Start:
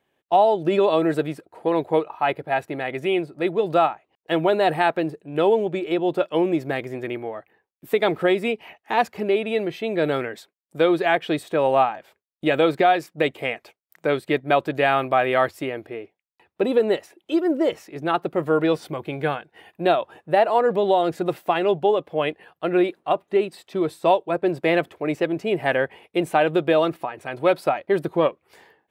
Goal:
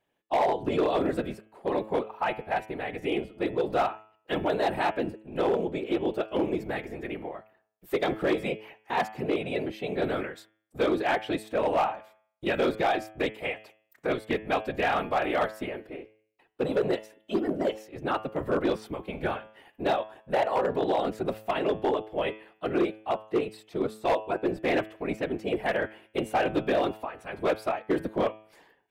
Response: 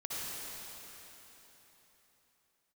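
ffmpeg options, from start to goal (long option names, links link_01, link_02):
-af "afftfilt=real='hypot(re,im)*cos(2*PI*random(0))':imag='hypot(re,im)*sin(2*PI*random(1))':win_size=512:overlap=0.75,bandreject=frequency=108.3:width_type=h:width=4,bandreject=frequency=216.6:width_type=h:width=4,bandreject=frequency=324.9:width_type=h:width=4,bandreject=frequency=433.2:width_type=h:width=4,bandreject=frequency=541.5:width_type=h:width=4,bandreject=frequency=649.8:width_type=h:width=4,bandreject=frequency=758.1:width_type=h:width=4,bandreject=frequency=866.4:width_type=h:width=4,bandreject=frequency=974.7:width_type=h:width=4,bandreject=frequency=1083:width_type=h:width=4,bandreject=frequency=1191.3:width_type=h:width=4,bandreject=frequency=1299.6:width_type=h:width=4,bandreject=frequency=1407.9:width_type=h:width=4,bandreject=frequency=1516.2:width_type=h:width=4,bandreject=frequency=1624.5:width_type=h:width=4,bandreject=frequency=1732.8:width_type=h:width=4,bandreject=frequency=1841.1:width_type=h:width=4,bandreject=frequency=1949.4:width_type=h:width=4,bandreject=frequency=2057.7:width_type=h:width=4,bandreject=frequency=2166:width_type=h:width=4,bandreject=frequency=2274.3:width_type=h:width=4,bandreject=frequency=2382.6:width_type=h:width=4,bandreject=frequency=2490.9:width_type=h:width=4,bandreject=frequency=2599.2:width_type=h:width=4,bandreject=frequency=2707.5:width_type=h:width=4,bandreject=frequency=2815.8:width_type=h:width=4,bandreject=frequency=2924.1:width_type=h:width=4,bandreject=frequency=3032.4:width_type=h:width=4,bandreject=frequency=3140.7:width_type=h:width=4,bandreject=frequency=3249:width_type=h:width=4,bandreject=frequency=3357.3:width_type=h:width=4,bandreject=frequency=3465.6:width_type=h:width=4,volume=19dB,asoftclip=hard,volume=-19dB"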